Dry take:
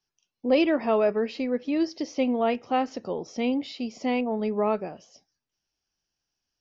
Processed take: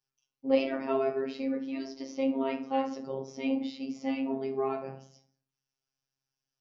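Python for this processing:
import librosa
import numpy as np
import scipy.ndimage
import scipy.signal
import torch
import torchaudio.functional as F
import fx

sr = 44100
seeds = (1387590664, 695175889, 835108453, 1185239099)

y = fx.rev_fdn(x, sr, rt60_s=0.51, lf_ratio=1.3, hf_ratio=0.6, size_ms=39.0, drr_db=0.5)
y = fx.robotise(y, sr, hz=134.0)
y = y * librosa.db_to_amplitude(-6.5)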